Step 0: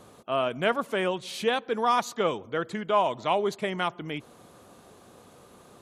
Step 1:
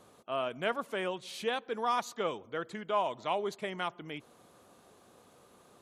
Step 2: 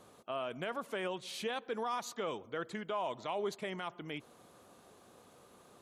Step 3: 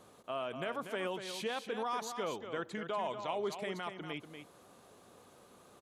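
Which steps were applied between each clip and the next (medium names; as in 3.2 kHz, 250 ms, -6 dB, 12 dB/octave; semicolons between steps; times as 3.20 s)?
bass shelf 220 Hz -5 dB; trim -6.5 dB
peak limiter -27.5 dBFS, peak gain reduction 9 dB
delay 240 ms -8.5 dB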